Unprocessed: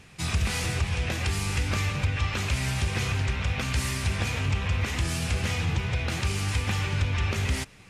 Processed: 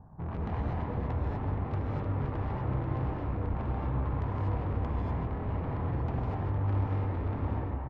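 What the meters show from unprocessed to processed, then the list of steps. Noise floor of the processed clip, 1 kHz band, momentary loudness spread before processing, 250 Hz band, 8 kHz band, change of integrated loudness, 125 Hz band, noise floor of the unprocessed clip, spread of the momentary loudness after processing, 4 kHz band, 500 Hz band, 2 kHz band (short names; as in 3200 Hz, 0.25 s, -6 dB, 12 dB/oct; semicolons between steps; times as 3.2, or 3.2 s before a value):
-36 dBFS, -1.5 dB, 1 LU, -1.5 dB, under -40 dB, -5.5 dB, -4.0 dB, -49 dBFS, 3 LU, under -25 dB, -0.5 dB, -18.0 dB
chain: steep low-pass 1200 Hz 48 dB/oct; comb 1.2 ms, depth 63%; tube stage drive 35 dB, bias 0.6; non-linear reverb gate 0.27 s rising, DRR -3.5 dB; gain +1 dB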